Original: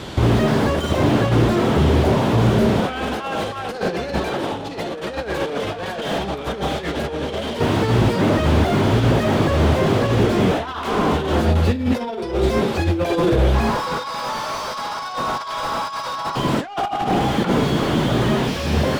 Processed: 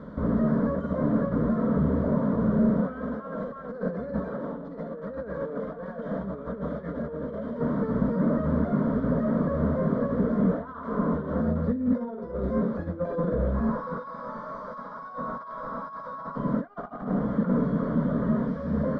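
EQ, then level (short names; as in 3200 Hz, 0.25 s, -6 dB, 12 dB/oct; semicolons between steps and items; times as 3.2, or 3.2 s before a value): LPF 1200 Hz 12 dB/oct; bell 180 Hz +5.5 dB 1.4 oct; fixed phaser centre 530 Hz, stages 8; -7.0 dB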